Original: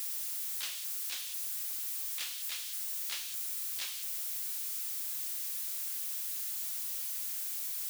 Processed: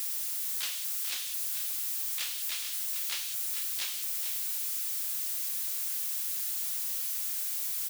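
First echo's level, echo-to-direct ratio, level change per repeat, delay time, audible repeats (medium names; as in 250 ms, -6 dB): -8.5 dB, -8.5 dB, no regular repeats, 441 ms, 1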